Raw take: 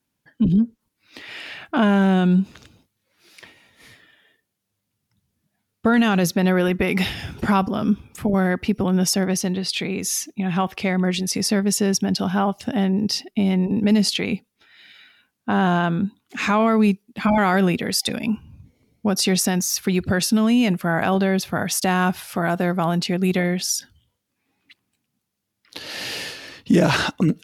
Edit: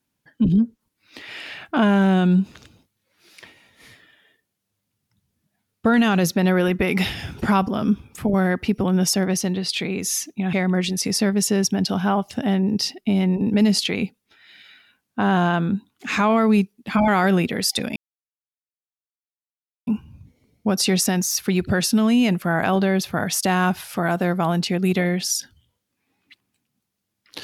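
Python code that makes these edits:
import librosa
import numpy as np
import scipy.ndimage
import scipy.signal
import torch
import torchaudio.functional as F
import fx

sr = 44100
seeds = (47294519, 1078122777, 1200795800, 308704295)

y = fx.edit(x, sr, fx.cut(start_s=10.53, length_s=0.3),
    fx.insert_silence(at_s=18.26, length_s=1.91), tone=tone)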